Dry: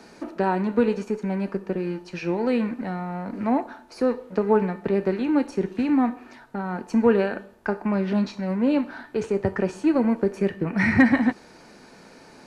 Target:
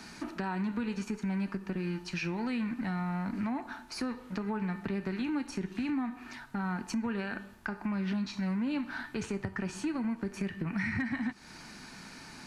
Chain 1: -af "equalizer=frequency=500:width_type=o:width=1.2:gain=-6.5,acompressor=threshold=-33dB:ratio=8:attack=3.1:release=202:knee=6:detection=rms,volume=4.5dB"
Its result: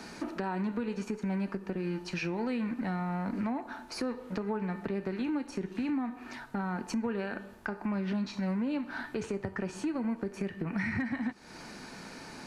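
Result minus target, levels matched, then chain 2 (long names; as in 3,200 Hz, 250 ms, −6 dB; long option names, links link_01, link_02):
500 Hz band +4.0 dB
-af "equalizer=frequency=500:width_type=o:width=1.2:gain=-17,acompressor=threshold=-33dB:ratio=8:attack=3.1:release=202:knee=6:detection=rms,volume=4.5dB"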